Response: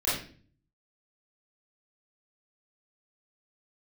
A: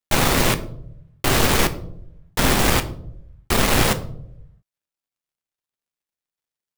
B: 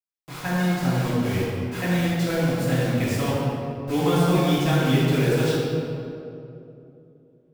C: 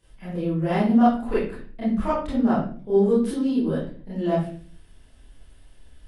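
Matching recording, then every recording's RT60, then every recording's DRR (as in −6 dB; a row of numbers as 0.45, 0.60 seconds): C; 0.75, 2.8, 0.45 seconds; 9.0, −11.0, −11.0 decibels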